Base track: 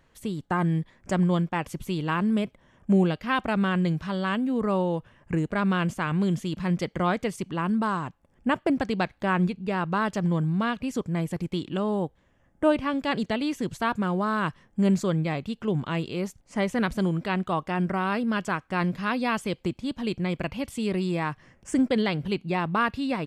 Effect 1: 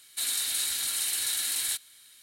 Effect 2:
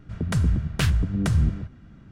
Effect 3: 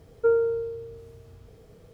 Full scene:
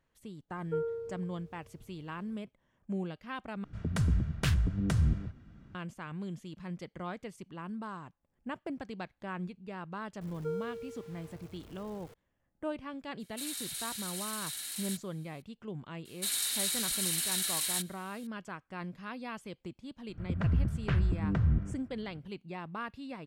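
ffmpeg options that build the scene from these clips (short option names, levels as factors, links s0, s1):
-filter_complex "[3:a]asplit=2[s0][s1];[2:a]asplit=2[s2][s3];[1:a]asplit=2[s4][s5];[0:a]volume=0.178[s6];[s1]aeval=exprs='val(0)+0.5*0.02*sgn(val(0))':c=same[s7];[s3]lowpass=1900[s8];[s6]asplit=2[s9][s10];[s9]atrim=end=3.644[s11];[s2]atrim=end=2.11,asetpts=PTS-STARTPTS,volume=0.473[s12];[s10]atrim=start=5.746[s13];[s0]atrim=end=1.93,asetpts=PTS-STARTPTS,volume=0.237,afade=t=in:d=0.05,afade=t=out:st=1.88:d=0.05,adelay=480[s14];[s7]atrim=end=1.93,asetpts=PTS-STARTPTS,volume=0.158,afade=t=in:d=0.004:c=hsin,afade=t=out:st=1.926:d=0.004:c=hsin,adelay=10210[s15];[s4]atrim=end=2.22,asetpts=PTS-STARTPTS,volume=0.299,afade=t=in:d=0.004:c=hsin,afade=t=out:st=2.216:d=0.004:c=hsin,adelay=13200[s16];[s5]atrim=end=2.22,asetpts=PTS-STARTPTS,volume=0.708,afade=t=in:d=0.004:c=hsin,afade=t=out:st=2.216:d=0.004:c=hsin,adelay=16050[s17];[s8]atrim=end=2.11,asetpts=PTS-STARTPTS,volume=0.473,afade=t=in:d=0.004:c=hsin,afade=t=out:st=2.106:d=0.004:c=hsin,adelay=20090[s18];[s11][s12]acrossfade=d=0.004:c1=hsin:c2=hsin[s19];[s19][s13]acrossfade=d=0.004:c1=hsin:c2=hsin[s20];[s20][s14][s15][s16][s17][s18]amix=inputs=6:normalize=0"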